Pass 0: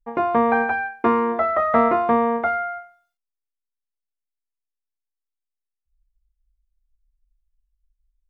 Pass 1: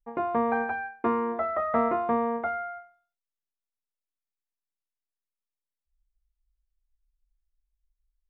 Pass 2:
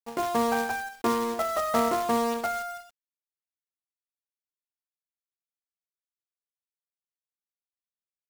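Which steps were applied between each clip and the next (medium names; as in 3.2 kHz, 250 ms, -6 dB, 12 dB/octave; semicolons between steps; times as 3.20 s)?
treble shelf 2.9 kHz -9 dB; trim -7 dB
companded quantiser 4-bit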